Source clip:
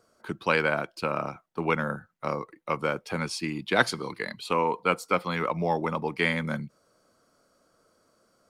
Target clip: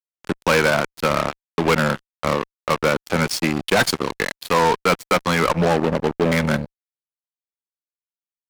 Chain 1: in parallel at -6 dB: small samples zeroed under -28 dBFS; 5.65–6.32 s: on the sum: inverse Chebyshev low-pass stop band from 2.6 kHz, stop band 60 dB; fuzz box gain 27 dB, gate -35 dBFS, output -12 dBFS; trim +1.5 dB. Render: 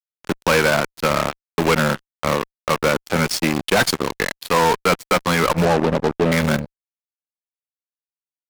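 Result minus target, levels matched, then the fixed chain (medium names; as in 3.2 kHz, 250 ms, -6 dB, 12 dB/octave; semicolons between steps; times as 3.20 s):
small samples zeroed: distortion -8 dB
in parallel at -6 dB: small samples zeroed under -20 dBFS; 5.65–6.32 s: on the sum: inverse Chebyshev low-pass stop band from 2.6 kHz, stop band 60 dB; fuzz box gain 27 dB, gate -35 dBFS, output -12 dBFS; trim +1.5 dB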